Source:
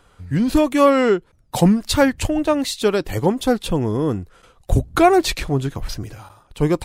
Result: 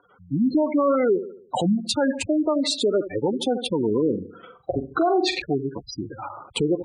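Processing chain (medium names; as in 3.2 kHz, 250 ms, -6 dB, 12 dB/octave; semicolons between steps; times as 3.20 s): recorder AGC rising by 15 dB/s; filtered feedback delay 74 ms, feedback 45%, low-pass 4 kHz, level -13.5 dB; spectral gate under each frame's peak -15 dB strong; high-pass 270 Hz 12 dB/octave; 4.04–5.42 s: flutter echo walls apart 7.5 m, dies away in 0.26 s; peak limiter -13 dBFS, peak gain reduction 11 dB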